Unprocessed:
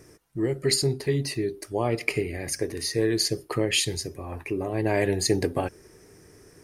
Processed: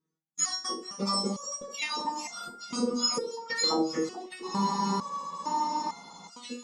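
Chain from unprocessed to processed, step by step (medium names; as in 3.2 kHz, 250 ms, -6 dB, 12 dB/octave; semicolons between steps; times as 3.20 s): spectrum inverted on a logarithmic axis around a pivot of 1.5 kHz; low-pass 8.2 kHz 24 dB/octave; gate -41 dBFS, range -42 dB; tone controls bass -2 dB, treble -6 dB; compression 10:1, threshold -35 dBFS, peak gain reduction 19.5 dB; transient shaper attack +4 dB, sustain -1 dB; echo whose repeats swap between lows and highs 434 ms, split 2.3 kHz, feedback 66%, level -11.5 dB; loudness maximiser +29 dB; spectral freeze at 4.46 s, 1.82 s; resonator arpeggio 2.2 Hz 160–700 Hz; trim -5 dB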